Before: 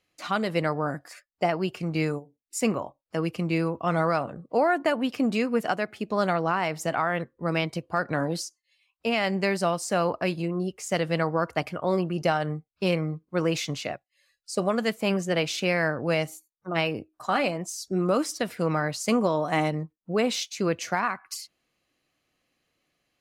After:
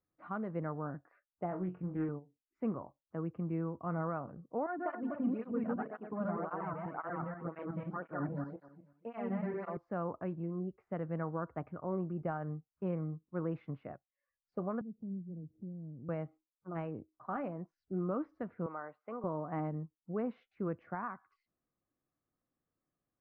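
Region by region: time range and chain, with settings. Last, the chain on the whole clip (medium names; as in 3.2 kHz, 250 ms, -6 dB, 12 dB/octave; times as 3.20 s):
1.49–2.09 s: distance through air 180 m + flutter echo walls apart 3.8 m, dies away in 0.23 s + loudspeaker Doppler distortion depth 0.24 ms
4.66–9.77 s: backward echo that repeats 122 ms, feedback 44%, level 0 dB + cancelling through-zero flanger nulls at 1.9 Hz, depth 2.9 ms
14.81–16.09 s: four-pole ladder low-pass 320 Hz, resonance 20% + upward compressor, threshold -35 dBFS
18.66–19.24 s: band-pass 530–2700 Hz + band-stop 1.7 kHz, Q 16
whole clip: low-pass 1.3 kHz 24 dB/octave; peaking EQ 650 Hz -6.5 dB 1.7 oct; trim -8 dB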